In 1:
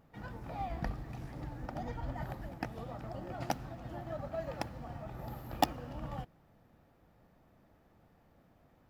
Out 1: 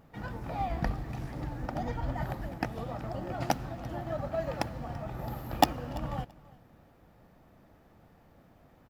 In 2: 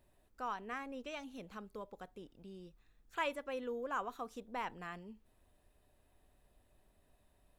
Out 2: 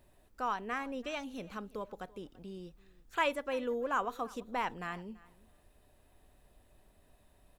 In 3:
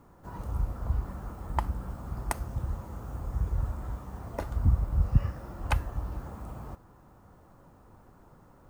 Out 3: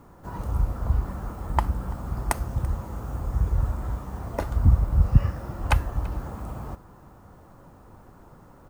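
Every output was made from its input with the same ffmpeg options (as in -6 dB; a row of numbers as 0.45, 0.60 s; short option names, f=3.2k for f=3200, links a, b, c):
-af "aecho=1:1:336|672:0.0794|0.0127,volume=6dB"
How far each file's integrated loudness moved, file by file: +6.0, +6.0, +6.0 LU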